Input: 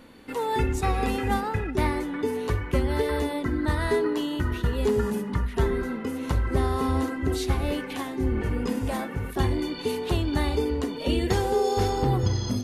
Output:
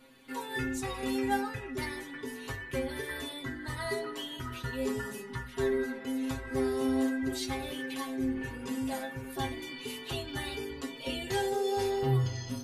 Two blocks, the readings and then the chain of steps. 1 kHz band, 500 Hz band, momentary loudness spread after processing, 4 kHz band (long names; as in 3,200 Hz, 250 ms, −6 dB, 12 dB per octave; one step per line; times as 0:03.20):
−8.5 dB, −7.0 dB, 9 LU, −3.5 dB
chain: tilt shelving filter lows −4 dB, about 1,100 Hz
stiff-string resonator 130 Hz, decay 0.27 s, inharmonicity 0.002
level +4 dB